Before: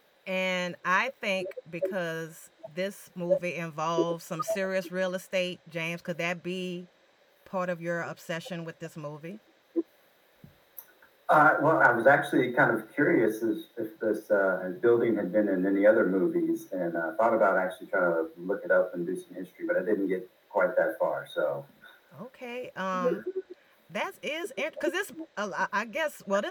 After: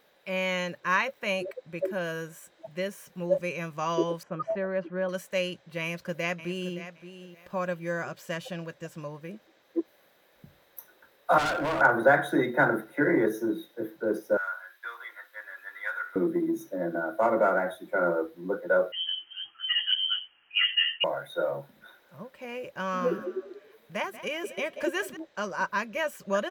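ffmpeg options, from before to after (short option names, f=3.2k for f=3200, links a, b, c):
-filter_complex "[0:a]asettb=1/sr,asplit=3[a][b][c];[a]atrim=end=4.234[d];[b]atrim=start=4.23:end=5.09,asetpts=PTS-STARTPTS,afade=t=in:d=0.004:c=qsin,afade=t=out:st=0.856:d=0.004:c=qsin,lowpass=1.5k[e];[c]atrim=start=5.086[f];[d][e]acrossfade=d=0.004:c1=hsin:c2=qsin[g];[g][f]acrossfade=d=0.004:c1=qsin:c2=hsin,asplit=2[h][i];[i]afade=t=in:st=5.81:d=0.01,afade=t=out:st=6.77:d=0.01,aecho=0:1:570|1140:0.237137|0.0474275[j];[h][j]amix=inputs=2:normalize=0,asettb=1/sr,asplit=3[k][l][m];[k]atrim=end=11.384[n];[l]atrim=start=11.38:end=11.81,asetpts=PTS-STARTPTS,afade=t=in:d=0.004:c=qsin,afade=t=out:st=0.426:d=0.004:c=qsin,asoftclip=type=hard:threshold=-26dB[o];[m]atrim=start=11.806[p];[n][o]acrossfade=d=0.004:c1=hsin:c2=qsin[q];[q][p]acrossfade=d=0.004:c1=qsin:c2=hsin,asettb=1/sr,asplit=3[r][s][t];[r]atrim=end=14.374[u];[s]atrim=start=14.37:end=16.16,asetpts=PTS-STARTPTS,afade=t=in:d=0.004:c=qsin,afade=t=out:st=1.786:d=0.004:c=qsin,highpass=f=1.2k:w=0.5412,highpass=f=1.2k:w=1.3066[v];[t]atrim=start=16.156[w];[u][v]acrossfade=d=0.004:c1=hsin:c2=qsin[x];[x][w]acrossfade=d=0.004:c1=qsin:c2=hsin,asettb=1/sr,asplit=3[y][z][aa];[y]atrim=end=18.924[ab];[z]atrim=start=18.92:end=21.04,asetpts=PTS-STARTPTS,afade=t=in:d=0.004:c=qsin,afade=t=out:st=2.116:d=0.004:c=qsin,lowpass=f=2.9k:t=q:w=0.5098,lowpass=f=2.9k:t=q:w=0.6013,lowpass=f=2.9k:t=q:w=0.9,lowpass=f=2.9k:t=q:w=2.563,afreqshift=-3400[ac];[aa]atrim=start=21.036[ad];[ab][ac]acrossfade=d=0.004:c1=hsin:c2=qsin[ae];[ae][ad]acrossfade=d=0.004:c1=qsin:c2=hsin,asettb=1/sr,asplit=3[af][ag][ah];[af]atrim=end=22.704[ai];[ag]atrim=start=22.7:end=25.17,asetpts=PTS-STARTPTS,afade=t=in:d=0.004:c=qsin,afade=t=out:st=2.466:d=0.004:c=qsin,asplit=4[aj][ak][al][am];[ak]adelay=185,afreqshift=33,volume=-14.5dB[an];[al]adelay=370,afreqshift=66,volume=-24.7dB[ao];[am]adelay=555,afreqshift=99,volume=-34.8dB[ap];[aj][an][ao][ap]amix=inputs=4:normalize=0,atrim=end_sample=108927[aq];[ah]atrim=start=25.166[ar];[ai][aq]acrossfade=d=0.004:c1=hsin:c2=qsin[as];[as][ar]acrossfade=d=0.004:c1=qsin:c2=hsin"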